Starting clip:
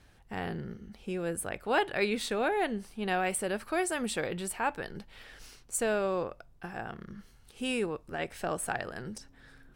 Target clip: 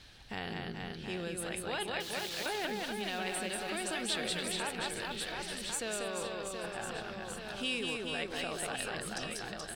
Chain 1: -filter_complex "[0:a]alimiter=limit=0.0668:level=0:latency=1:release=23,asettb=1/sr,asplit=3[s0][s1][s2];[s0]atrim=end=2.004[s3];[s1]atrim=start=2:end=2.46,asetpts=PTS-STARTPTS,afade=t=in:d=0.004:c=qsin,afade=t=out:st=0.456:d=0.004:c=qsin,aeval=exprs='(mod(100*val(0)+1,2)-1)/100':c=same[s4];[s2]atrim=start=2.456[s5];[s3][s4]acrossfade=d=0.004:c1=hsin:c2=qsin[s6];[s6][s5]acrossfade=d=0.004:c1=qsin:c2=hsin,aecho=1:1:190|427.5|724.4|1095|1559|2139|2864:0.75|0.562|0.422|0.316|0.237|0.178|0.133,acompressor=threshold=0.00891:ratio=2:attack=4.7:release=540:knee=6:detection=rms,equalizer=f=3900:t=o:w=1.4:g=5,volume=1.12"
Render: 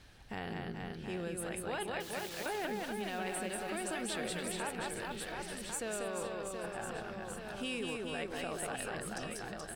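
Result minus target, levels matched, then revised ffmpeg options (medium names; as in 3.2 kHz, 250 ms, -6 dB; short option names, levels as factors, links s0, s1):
4 kHz band -5.0 dB
-filter_complex "[0:a]alimiter=limit=0.0668:level=0:latency=1:release=23,asettb=1/sr,asplit=3[s0][s1][s2];[s0]atrim=end=2.004[s3];[s1]atrim=start=2:end=2.46,asetpts=PTS-STARTPTS,afade=t=in:d=0.004:c=qsin,afade=t=out:st=0.456:d=0.004:c=qsin,aeval=exprs='(mod(100*val(0)+1,2)-1)/100':c=same[s4];[s2]atrim=start=2.456[s5];[s3][s4]acrossfade=d=0.004:c1=hsin:c2=qsin[s6];[s6][s5]acrossfade=d=0.004:c1=qsin:c2=hsin,aecho=1:1:190|427.5|724.4|1095|1559|2139|2864:0.75|0.562|0.422|0.316|0.237|0.178|0.133,acompressor=threshold=0.00891:ratio=2:attack=4.7:release=540:knee=6:detection=rms,equalizer=f=3900:t=o:w=1.4:g=14,volume=1.12"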